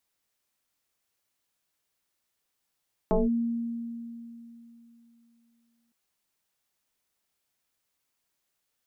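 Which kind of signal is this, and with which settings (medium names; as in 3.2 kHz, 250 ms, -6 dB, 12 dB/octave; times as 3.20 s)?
FM tone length 2.81 s, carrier 233 Hz, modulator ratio 0.9, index 3, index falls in 0.18 s linear, decay 3.18 s, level -19 dB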